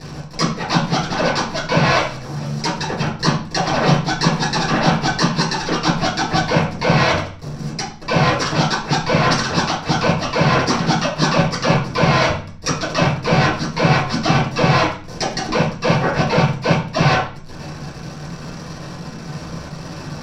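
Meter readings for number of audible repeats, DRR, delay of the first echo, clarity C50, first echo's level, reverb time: none, -7.0 dB, none, 5.5 dB, none, 0.45 s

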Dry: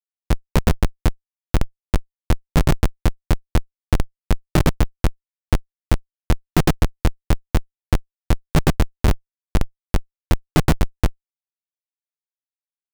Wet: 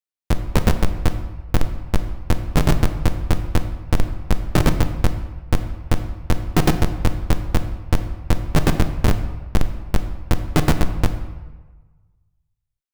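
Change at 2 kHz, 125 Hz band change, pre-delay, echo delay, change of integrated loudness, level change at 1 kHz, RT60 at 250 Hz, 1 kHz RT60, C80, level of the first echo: +0.5 dB, +0.5 dB, 4 ms, none, +0.5 dB, +1.0 dB, 1.2 s, 1.3 s, 11.5 dB, none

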